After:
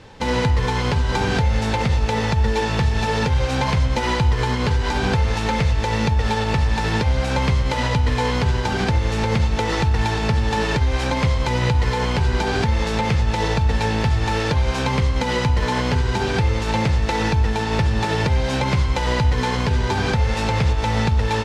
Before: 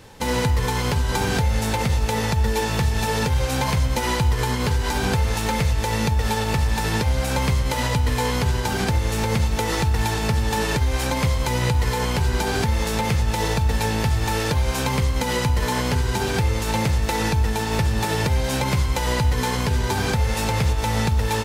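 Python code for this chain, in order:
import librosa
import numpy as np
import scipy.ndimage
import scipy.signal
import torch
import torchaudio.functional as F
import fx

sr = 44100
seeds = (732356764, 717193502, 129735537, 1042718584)

y = scipy.signal.sosfilt(scipy.signal.butter(2, 4900.0, 'lowpass', fs=sr, output='sos'), x)
y = y * librosa.db_to_amplitude(2.0)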